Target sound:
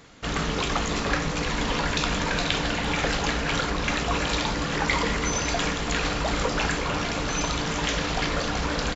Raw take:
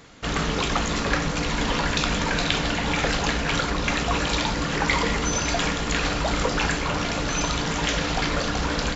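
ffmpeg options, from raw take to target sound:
-filter_complex "[0:a]asplit=2[a][b];[b]adelay=340,highpass=300,lowpass=3.4k,asoftclip=type=hard:threshold=-11.5dB,volume=-9dB[c];[a][c]amix=inputs=2:normalize=0,volume=-2dB"

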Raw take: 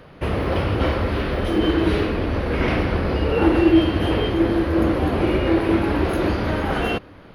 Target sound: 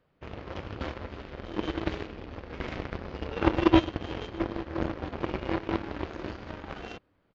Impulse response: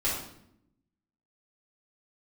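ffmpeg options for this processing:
-af "aeval=exprs='0.631*(cos(1*acos(clip(val(0)/0.631,-1,1)))-cos(1*PI/2))+0.2*(cos(3*acos(clip(val(0)/0.631,-1,1)))-cos(3*PI/2))':c=same,aresample=16000,aresample=44100"

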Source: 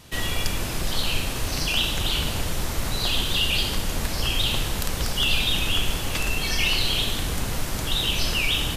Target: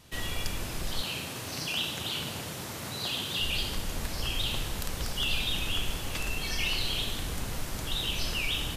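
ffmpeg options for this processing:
-filter_complex "[0:a]asettb=1/sr,asplit=3[a][b][c];[a]atrim=end=1.024[d];[b]atrim=start=1.02:end=3.4,asetpts=PTS-STARTPTS,afade=t=in:d=0.004:c=qsin,afade=t=out:st=2.376:d=0.004:c=qsin,highpass=f=100:w=0.5412,highpass=f=100:w=1.3066[e];[c]atrim=start=3.396[f];[d][e]acrossfade=d=0.004:c1=hsin:c2=qsin[g];[g][f]acrossfade=d=0.004:c1=qsin:c2=hsin,volume=-7.5dB"

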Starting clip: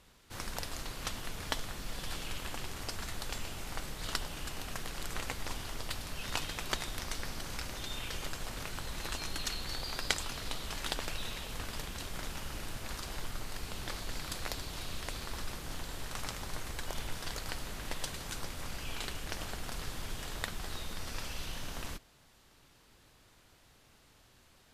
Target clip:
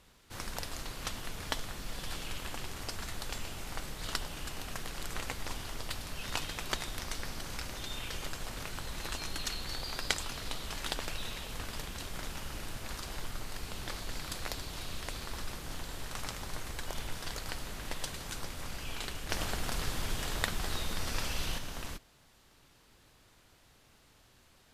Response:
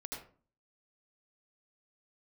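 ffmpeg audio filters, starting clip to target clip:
-filter_complex "[0:a]asplit=3[a][b][c];[a]afade=t=out:st=19.29:d=0.02[d];[b]acontrast=33,afade=t=in:st=19.29:d=0.02,afade=t=out:st=21.57:d=0.02[e];[c]afade=t=in:st=21.57:d=0.02[f];[d][e][f]amix=inputs=3:normalize=0"

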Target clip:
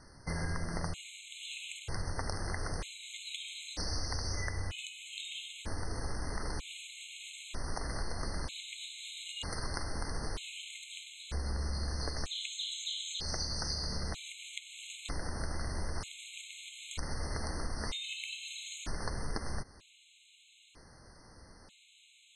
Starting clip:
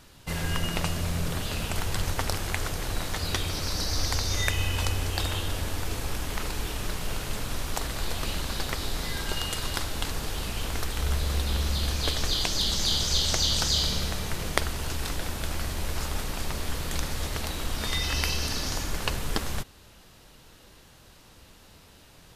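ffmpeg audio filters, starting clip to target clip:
-af "acompressor=threshold=-29dB:ratio=6,aresample=22050,aresample=44100,afftfilt=real='re*gt(sin(2*PI*0.53*pts/sr)*(1-2*mod(floor(b*sr/1024/2100),2)),0)':imag='im*gt(sin(2*PI*0.53*pts/sr)*(1-2*mod(floor(b*sr/1024/2100),2)),0)':win_size=1024:overlap=0.75,volume=-2dB"

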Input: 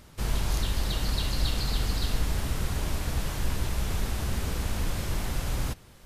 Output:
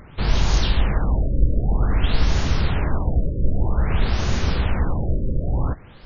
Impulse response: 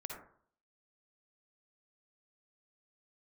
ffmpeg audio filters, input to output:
-filter_complex "[0:a]asplit=2[a][b];[b]asetrate=37084,aresample=44100,atempo=1.18921,volume=-8dB[c];[a][c]amix=inputs=2:normalize=0,afftfilt=real='re*lt(b*sr/1024,590*pow(7100/590,0.5+0.5*sin(2*PI*0.52*pts/sr)))':imag='im*lt(b*sr/1024,590*pow(7100/590,0.5+0.5*sin(2*PI*0.52*pts/sr)))':win_size=1024:overlap=0.75,volume=8.5dB"

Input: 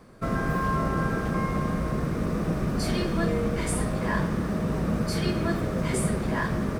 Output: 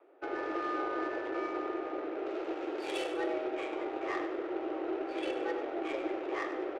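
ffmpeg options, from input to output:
-filter_complex "[0:a]highpass=f=160:t=q:w=0.5412,highpass=f=160:t=q:w=1.307,lowpass=f=3.5k:t=q:w=0.5176,lowpass=f=3.5k:t=q:w=0.7071,lowpass=f=3.5k:t=q:w=1.932,afreqshift=160,aexciter=amount=3.4:drive=4.1:freq=2.4k,adynamicsmooth=sensitivity=1.5:basefreq=1.4k,asettb=1/sr,asplit=3[a][b][c];[a]atrim=end=2.264[d];[b]atrim=start=2.26:end=3.12,asetpts=PTS-STARTPTS,afade=t=in:d=0.004:c=qsin,afade=t=out:st=0.856:d=0.004:c=qsin,aemphasis=mode=production:type=75fm[e];[c]atrim=start=3.116[f];[d][e]acrossfade=d=0.004:c1=hsin:c2=qsin[g];[g][f]acrossfade=d=0.004:c1=qsin:c2=hsin,asplit=2[h][i];[i]aecho=0:1:98|196|294|392:0.282|0.113|0.0451|0.018[j];[h][j]amix=inputs=2:normalize=0,volume=-7.5dB"

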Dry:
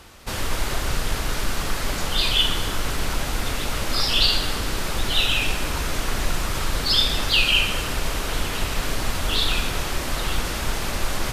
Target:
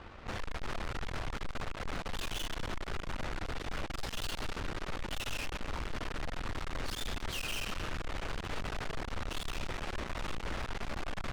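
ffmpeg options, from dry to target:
-af "lowpass=2.2k,aeval=exprs='(tanh(79.4*val(0)+0.7)-tanh(0.7))/79.4':c=same,volume=2dB"

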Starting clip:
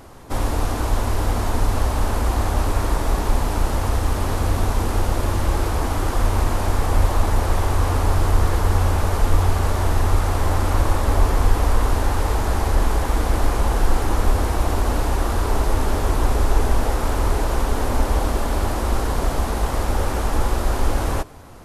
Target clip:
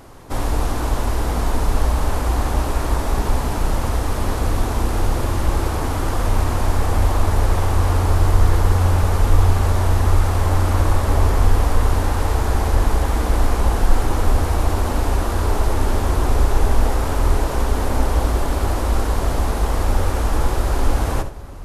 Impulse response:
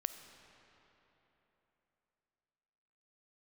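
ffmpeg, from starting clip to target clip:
-filter_complex "[0:a]asplit=2[a][b];[1:a]atrim=start_sample=2205,lowshelf=f=320:g=9.5,adelay=69[c];[b][c]afir=irnorm=-1:irlink=0,volume=-11dB[d];[a][d]amix=inputs=2:normalize=0"

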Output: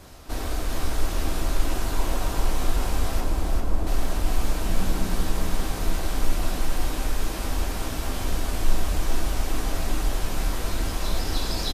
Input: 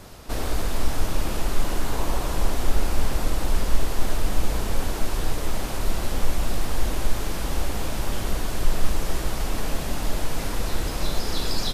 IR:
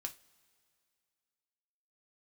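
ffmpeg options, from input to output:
-filter_complex "[0:a]asettb=1/sr,asplit=3[a][b][c];[a]atrim=end=3.204[d];[b]atrim=start=3.2:end=3.87,asetpts=PTS-STARTPTS,afade=t=in:d=0.004:c=qsin,afade=t=out:st=0.666:d=0.004:c=qsin,lowpass=1.1k[e];[c]atrim=start=3.866[f];[d][e]acrossfade=d=0.004:c1=hsin:c2=qsin[g];[g][f]acrossfade=d=0.004:c1=qsin:c2=hsin,asettb=1/sr,asplit=3[h][i][j];[h]atrim=end=4.644[k];[i]atrim=start=4.64:end=5.18,asetpts=PTS-STARTPTS,afade=t=in:d=0.004:c=qsin,afade=t=out:st=0.536:d=0.004:c=qsin,equalizer=f=180:t=o:w=0.67:g=12[l];[j]atrim=start=5.176[m];[k][l]acrossfade=d=0.004:c1=hsin:c2=qsin[n];[n][m]acrossfade=d=0.004:c1=qsin:c2=hsin,aecho=1:1:399|798|1197|1596|1995|2394:0.631|0.303|0.145|0.0698|0.0335|0.0161[o];[1:a]atrim=start_sample=2205[p];[o][p]afir=irnorm=-1:irlink=0"

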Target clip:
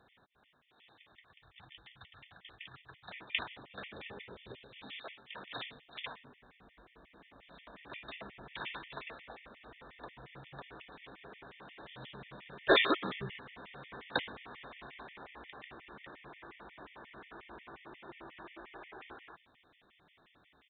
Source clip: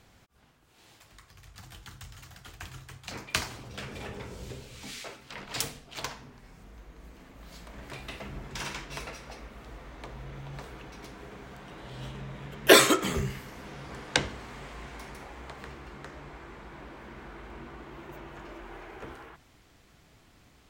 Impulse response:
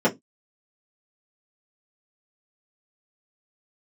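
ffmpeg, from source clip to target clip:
-af "aemphasis=mode=production:type=bsi,aresample=8000,asoftclip=type=tanh:threshold=-14dB,aresample=44100,afftfilt=real='re*gt(sin(2*PI*5.6*pts/sr)*(1-2*mod(floor(b*sr/1024/1800),2)),0)':imag='im*gt(sin(2*PI*5.6*pts/sr)*(1-2*mod(floor(b*sr/1024/1800),2)),0)':win_size=1024:overlap=0.75,volume=-2dB"

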